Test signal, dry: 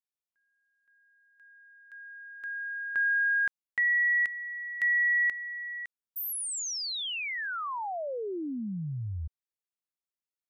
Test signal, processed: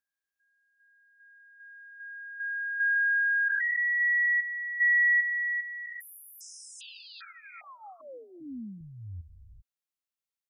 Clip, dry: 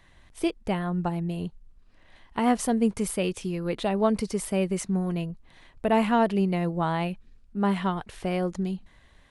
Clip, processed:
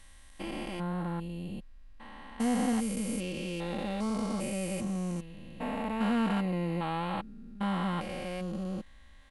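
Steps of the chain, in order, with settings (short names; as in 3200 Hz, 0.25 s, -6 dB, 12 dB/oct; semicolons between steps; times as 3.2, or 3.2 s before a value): stepped spectrum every 0.4 s; bell 340 Hz -5 dB 2.4 oct; comb 3.7 ms, depth 64%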